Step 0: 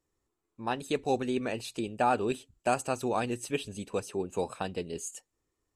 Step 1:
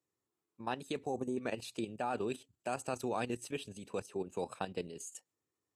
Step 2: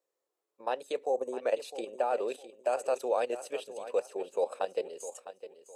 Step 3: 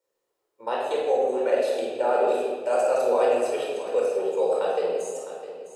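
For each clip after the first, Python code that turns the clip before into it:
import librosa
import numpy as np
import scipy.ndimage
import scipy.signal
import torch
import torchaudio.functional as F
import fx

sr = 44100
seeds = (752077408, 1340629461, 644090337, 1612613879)

y1 = scipy.signal.sosfilt(scipy.signal.butter(4, 97.0, 'highpass', fs=sr, output='sos'), x)
y1 = fx.spec_box(y1, sr, start_s=1.06, length_s=0.31, low_hz=1200.0, high_hz=5800.0, gain_db=-18)
y1 = fx.level_steps(y1, sr, step_db=11)
y1 = F.gain(torch.from_numpy(y1), -2.0).numpy()
y2 = fx.highpass_res(y1, sr, hz=530.0, q=4.9)
y2 = fx.echo_feedback(y2, sr, ms=657, feedback_pct=29, wet_db=-13.0)
y3 = fx.room_shoebox(y2, sr, seeds[0], volume_m3=1600.0, walls='mixed', distance_m=4.6)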